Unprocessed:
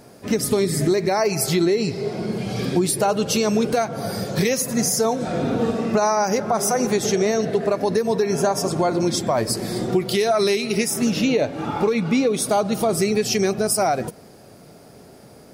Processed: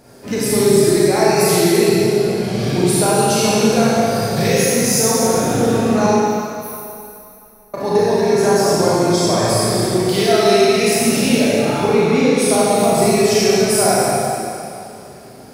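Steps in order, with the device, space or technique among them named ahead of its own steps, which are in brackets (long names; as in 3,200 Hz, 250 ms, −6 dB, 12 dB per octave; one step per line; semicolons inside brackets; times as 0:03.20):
0:06.06–0:07.74: inverse Chebyshev band-stop filter 100–7,600 Hz, stop band 40 dB
tunnel (flutter between parallel walls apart 6.2 metres, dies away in 0.31 s; convolution reverb RT60 2.6 s, pre-delay 29 ms, DRR −7.5 dB)
level −2 dB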